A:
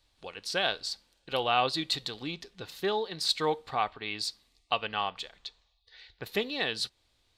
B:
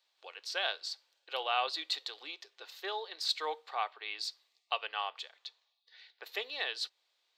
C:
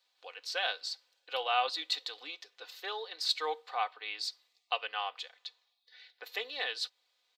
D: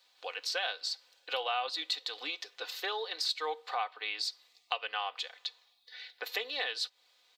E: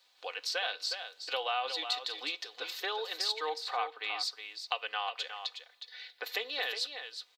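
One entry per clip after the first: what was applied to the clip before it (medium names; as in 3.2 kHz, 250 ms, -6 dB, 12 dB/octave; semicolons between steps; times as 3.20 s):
Bessel high-pass 680 Hz, order 8; peaking EQ 10 kHz -13 dB 0.47 oct; trim -3.5 dB
comb 4 ms, depth 55%
compression 3:1, threshold -42 dBFS, peak gain reduction 14 dB; trim +8.5 dB
delay 364 ms -8.5 dB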